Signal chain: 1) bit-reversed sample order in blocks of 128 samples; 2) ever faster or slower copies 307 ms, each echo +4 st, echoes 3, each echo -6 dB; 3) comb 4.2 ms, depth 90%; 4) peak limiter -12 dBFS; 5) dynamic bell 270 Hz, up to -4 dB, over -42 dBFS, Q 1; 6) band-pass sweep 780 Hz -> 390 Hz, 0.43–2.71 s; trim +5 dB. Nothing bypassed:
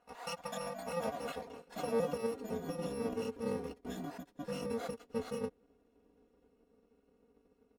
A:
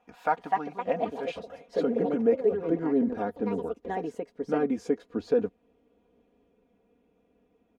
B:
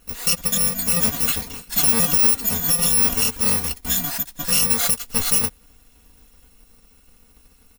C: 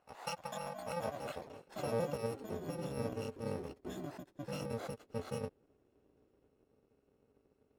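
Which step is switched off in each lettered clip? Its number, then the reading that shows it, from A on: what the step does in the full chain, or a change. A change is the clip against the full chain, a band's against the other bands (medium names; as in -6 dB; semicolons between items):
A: 1, 125 Hz band -5.5 dB; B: 6, 8 kHz band +20.5 dB; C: 3, 125 Hz band +5.5 dB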